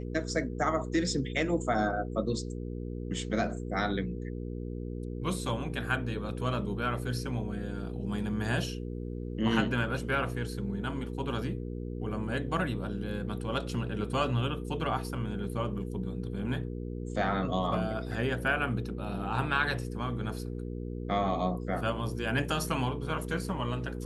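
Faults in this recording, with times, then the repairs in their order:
mains hum 60 Hz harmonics 8 −37 dBFS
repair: hum removal 60 Hz, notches 8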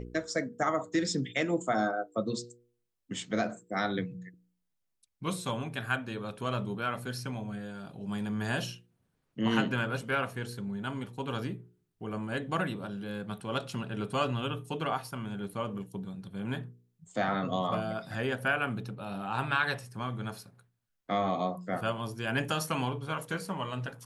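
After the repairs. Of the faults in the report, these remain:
none of them is left

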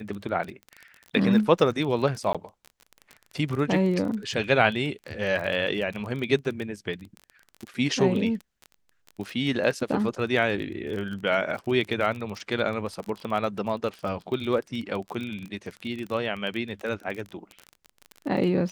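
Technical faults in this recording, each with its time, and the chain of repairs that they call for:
surface crackle 26 per second −31 dBFS
0:02.33–0:02.35: drop-out 16 ms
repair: click removal
repair the gap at 0:02.33, 16 ms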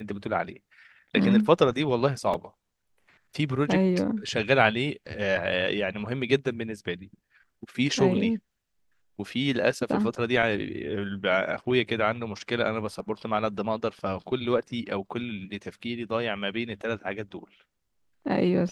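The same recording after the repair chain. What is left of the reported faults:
none of them is left

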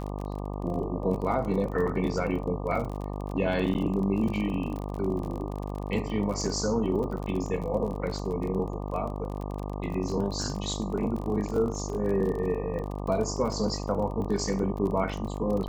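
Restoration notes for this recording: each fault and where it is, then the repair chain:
mains buzz 50 Hz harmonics 24 −34 dBFS
surface crackle 34 per second −33 dBFS
0:03.74–0:03.75: drop-out 9.1 ms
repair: click removal
hum removal 50 Hz, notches 24
repair the gap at 0:03.74, 9.1 ms

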